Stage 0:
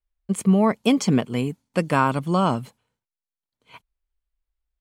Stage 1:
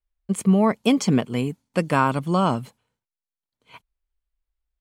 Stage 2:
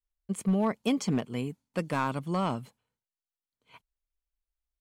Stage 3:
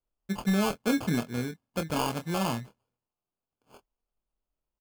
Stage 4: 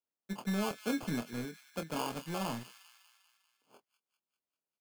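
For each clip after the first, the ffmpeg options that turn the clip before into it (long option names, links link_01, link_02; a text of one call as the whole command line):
ffmpeg -i in.wav -af anull out.wav
ffmpeg -i in.wav -af "aeval=exprs='clip(val(0),-1,0.251)':channel_layout=same,volume=-8.5dB" out.wav
ffmpeg -i in.wav -filter_complex "[0:a]acrusher=samples=23:mix=1:aa=0.000001,asplit=2[link_01][link_02];[link_02]adelay=25,volume=-8.5dB[link_03];[link_01][link_03]amix=inputs=2:normalize=0" out.wav
ffmpeg -i in.wav -filter_complex "[0:a]acrossover=split=140|1400[link_01][link_02][link_03];[link_01]acrusher=bits=4:dc=4:mix=0:aa=0.000001[link_04];[link_03]aecho=1:1:198|396|594|792|990|1188:0.282|0.161|0.0916|0.0522|0.0298|0.017[link_05];[link_04][link_02][link_05]amix=inputs=3:normalize=0,volume=-7dB" out.wav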